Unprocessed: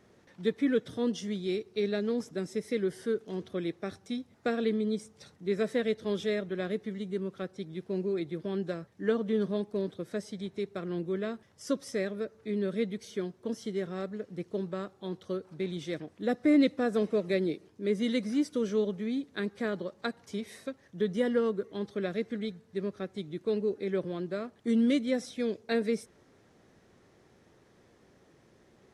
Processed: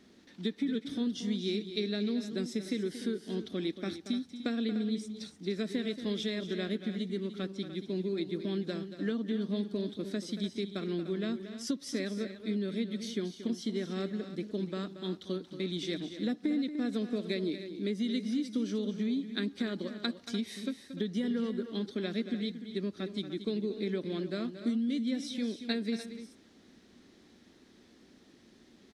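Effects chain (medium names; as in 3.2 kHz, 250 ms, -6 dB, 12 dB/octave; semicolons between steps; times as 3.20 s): ten-band graphic EQ 125 Hz -10 dB, 250 Hz +11 dB, 500 Hz -6 dB, 1 kHz -4 dB, 4 kHz +9 dB; compression 12:1, threshold -29 dBFS, peak gain reduction 16 dB; multi-tap echo 230/297 ms -11.5/-12.5 dB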